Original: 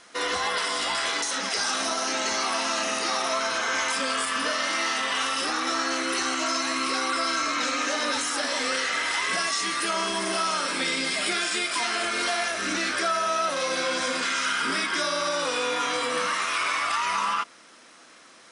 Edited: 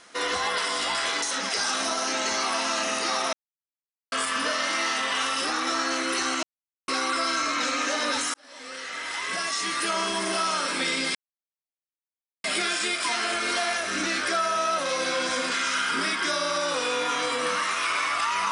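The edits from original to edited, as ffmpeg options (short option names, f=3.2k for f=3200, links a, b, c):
-filter_complex "[0:a]asplit=7[a][b][c][d][e][f][g];[a]atrim=end=3.33,asetpts=PTS-STARTPTS,afade=t=out:st=3.326:d=0.004:c=hsin[h];[b]atrim=start=3.33:end=4.12,asetpts=PTS-STARTPTS,volume=0[i];[c]atrim=start=4.12:end=6.43,asetpts=PTS-STARTPTS,afade=t=in:d=0.004:c=hsin,afade=t=out:st=2.306:d=0.004:c=hsin[j];[d]atrim=start=6.43:end=6.88,asetpts=PTS-STARTPTS,volume=0[k];[e]atrim=start=6.88:end=8.34,asetpts=PTS-STARTPTS,afade=t=in:d=0.004:c=hsin,afade=t=out:st=1.456:d=0.004:c=hsin[l];[f]atrim=start=8.34:end=11.15,asetpts=PTS-STARTPTS,afade=t=in:d=1.48,afade=t=out:st=2.806:d=0.004:c=hsin,apad=pad_dur=1.29[m];[g]atrim=start=11.15,asetpts=PTS-STARTPTS,afade=t=in:d=0.004:c=hsin[n];[h][i][j][k][l][m][n]concat=n=7:v=0:a=1"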